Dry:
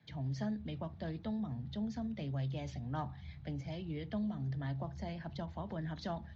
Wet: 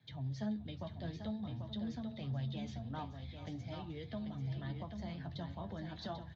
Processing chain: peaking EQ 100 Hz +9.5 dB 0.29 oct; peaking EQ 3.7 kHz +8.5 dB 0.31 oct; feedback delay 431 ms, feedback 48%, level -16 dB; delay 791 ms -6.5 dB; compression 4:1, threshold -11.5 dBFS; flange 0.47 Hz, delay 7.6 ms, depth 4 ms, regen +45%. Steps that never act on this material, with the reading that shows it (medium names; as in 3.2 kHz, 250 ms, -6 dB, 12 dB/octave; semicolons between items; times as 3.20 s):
compression, threshold -11.5 dBFS: peak at its input -24.5 dBFS